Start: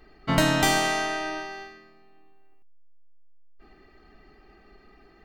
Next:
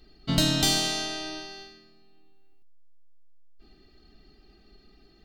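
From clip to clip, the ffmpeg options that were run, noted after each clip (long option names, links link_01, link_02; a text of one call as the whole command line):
ffmpeg -i in.wav -af "equalizer=frequency=500:width_type=o:width=1:gain=-5,equalizer=frequency=1000:width_type=o:width=1:gain=-10,equalizer=frequency=2000:width_type=o:width=1:gain=-10,equalizer=frequency=4000:width_type=o:width=1:gain=9" out.wav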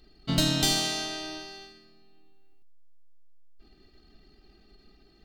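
ffmpeg -i in.wav -af "aeval=exprs='if(lt(val(0),0),0.708*val(0),val(0))':channel_layout=same" out.wav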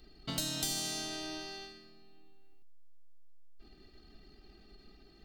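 ffmpeg -i in.wav -filter_complex "[0:a]acrossover=split=360|6300[link_01][link_02][link_03];[link_01]acompressor=threshold=-44dB:ratio=4[link_04];[link_02]acompressor=threshold=-41dB:ratio=4[link_05];[link_03]acompressor=threshold=-35dB:ratio=4[link_06];[link_04][link_05][link_06]amix=inputs=3:normalize=0" out.wav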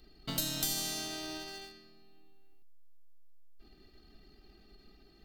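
ffmpeg -i in.wav -filter_complex "[0:a]equalizer=frequency=13000:width=3.9:gain=12,asplit=2[link_01][link_02];[link_02]acrusher=bits=4:dc=4:mix=0:aa=0.000001,volume=-8dB[link_03];[link_01][link_03]amix=inputs=2:normalize=0,volume=-1.5dB" out.wav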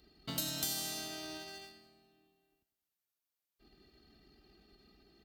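ffmpeg -i in.wav -af "highpass=55,aecho=1:1:98|196|294|392|490:0.224|0.119|0.0629|0.0333|0.0177,volume=-3dB" out.wav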